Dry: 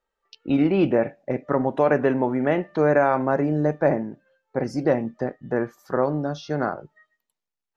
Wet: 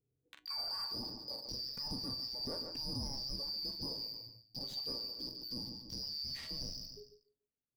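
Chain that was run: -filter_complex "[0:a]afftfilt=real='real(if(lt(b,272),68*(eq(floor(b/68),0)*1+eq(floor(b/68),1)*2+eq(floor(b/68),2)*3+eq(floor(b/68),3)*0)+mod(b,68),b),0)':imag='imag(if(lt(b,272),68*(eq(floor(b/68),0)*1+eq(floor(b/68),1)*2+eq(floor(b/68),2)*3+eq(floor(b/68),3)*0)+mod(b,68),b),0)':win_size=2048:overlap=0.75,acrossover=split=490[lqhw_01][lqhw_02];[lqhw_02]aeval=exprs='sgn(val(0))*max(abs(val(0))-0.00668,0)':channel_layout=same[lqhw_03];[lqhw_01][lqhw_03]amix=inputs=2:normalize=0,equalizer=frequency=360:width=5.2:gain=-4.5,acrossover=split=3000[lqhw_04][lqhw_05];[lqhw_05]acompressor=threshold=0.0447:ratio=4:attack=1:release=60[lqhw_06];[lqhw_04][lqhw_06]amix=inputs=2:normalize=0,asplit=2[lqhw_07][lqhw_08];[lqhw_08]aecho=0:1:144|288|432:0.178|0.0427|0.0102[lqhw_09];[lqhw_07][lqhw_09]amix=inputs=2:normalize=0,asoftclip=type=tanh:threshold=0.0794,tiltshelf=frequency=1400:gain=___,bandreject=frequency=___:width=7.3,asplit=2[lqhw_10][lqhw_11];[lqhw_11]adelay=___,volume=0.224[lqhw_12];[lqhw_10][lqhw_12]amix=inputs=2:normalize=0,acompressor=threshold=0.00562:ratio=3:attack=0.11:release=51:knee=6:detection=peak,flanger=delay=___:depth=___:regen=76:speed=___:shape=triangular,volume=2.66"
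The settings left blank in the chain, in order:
3.5, 1300, 43, 7.4, 1.8, 0.42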